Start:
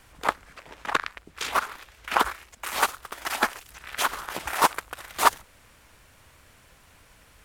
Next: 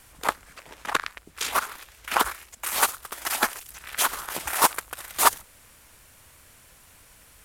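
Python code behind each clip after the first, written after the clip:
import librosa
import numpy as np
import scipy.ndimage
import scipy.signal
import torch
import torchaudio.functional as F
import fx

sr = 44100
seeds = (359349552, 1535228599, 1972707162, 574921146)

y = fx.peak_eq(x, sr, hz=12000.0, db=10.5, octaves=1.6)
y = y * 10.0 ** (-1.0 / 20.0)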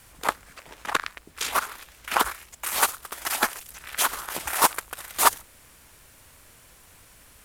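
y = fx.dmg_noise_colour(x, sr, seeds[0], colour='pink', level_db=-62.0)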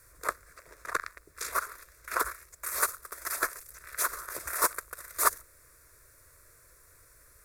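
y = fx.fixed_phaser(x, sr, hz=820.0, stages=6)
y = y * 10.0 ** (-4.0 / 20.0)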